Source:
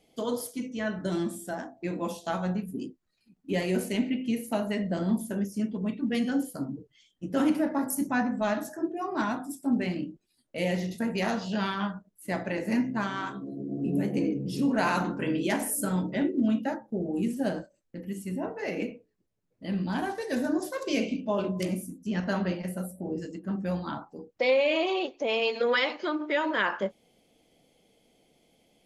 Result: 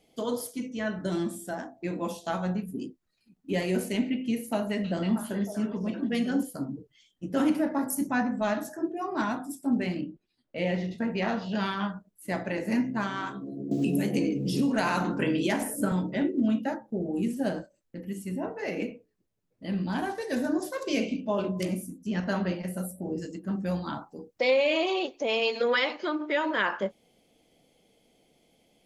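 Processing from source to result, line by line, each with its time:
4.38–6.43 delay with a stepping band-pass 0.316 s, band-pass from 3200 Hz, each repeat -1.4 oct, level -1.5 dB
10.01–11.55 LPF 3700 Hz
13.71–15.92 three-band squash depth 100%
22.74–25.68 tone controls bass +1 dB, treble +5 dB

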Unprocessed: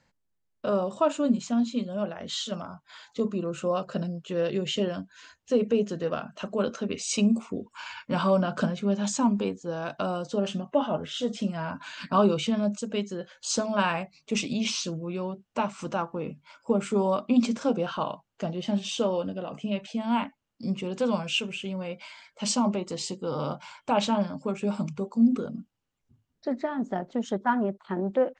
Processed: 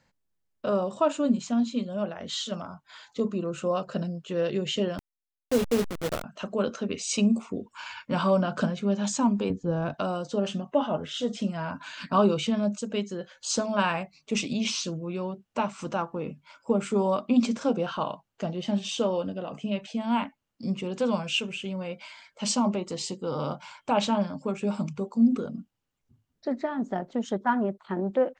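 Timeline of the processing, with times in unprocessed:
4.98–6.24 level-crossing sampler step -25.5 dBFS
9.5–9.94 RIAA curve playback

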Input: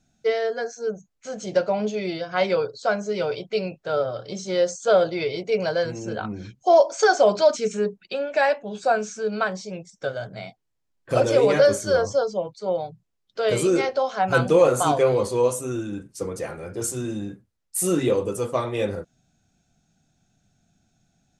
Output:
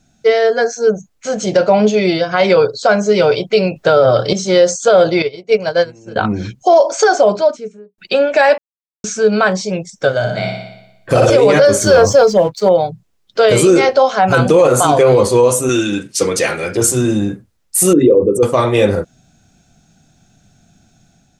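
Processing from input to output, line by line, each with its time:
3.76–4.33 gain +7.5 dB
5.22–6.16 upward expander 2.5:1, over -33 dBFS
6.7–7.98 studio fade out
8.58–9.04 mute
10.18–11.3 flutter echo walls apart 10.1 m, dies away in 0.89 s
11.81–12.69 sample leveller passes 1
15.69–16.77 weighting filter D
17.93–18.43 formant sharpening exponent 2
whole clip: AGC gain up to 4 dB; maximiser +11.5 dB; gain -1 dB

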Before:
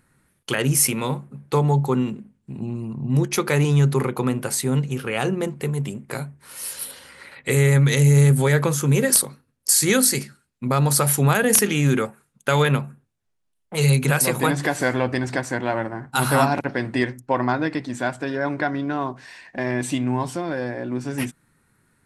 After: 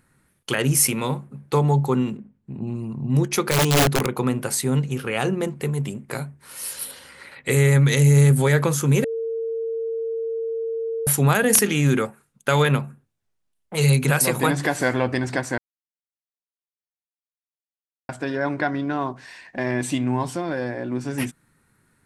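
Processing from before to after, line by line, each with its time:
2.17–2.67 LPF 1700 Hz 6 dB/oct
3.51–4.15 wrapped overs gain 13 dB
9.04–11.07 bleep 454 Hz -23.5 dBFS
15.58–18.09 mute

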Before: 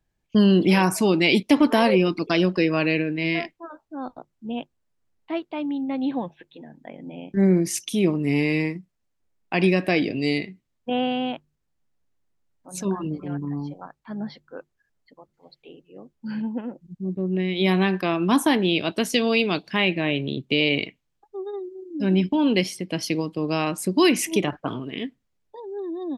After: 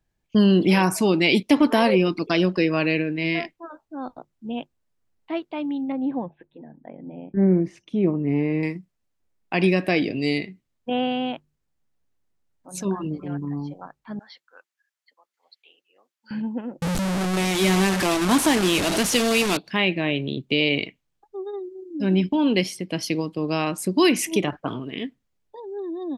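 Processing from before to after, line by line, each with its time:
5.92–8.63 Bessel low-pass 1100 Hz
14.19–16.31 HPF 1400 Hz
16.82–19.57 delta modulation 64 kbps, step -17.5 dBFS

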